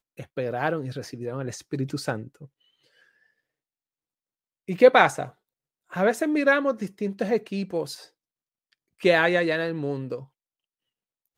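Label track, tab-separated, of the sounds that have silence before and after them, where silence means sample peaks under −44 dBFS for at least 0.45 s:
4.680000	5.300000	sound
5.910000	8.060000	sound
8.730000	10.250000	sound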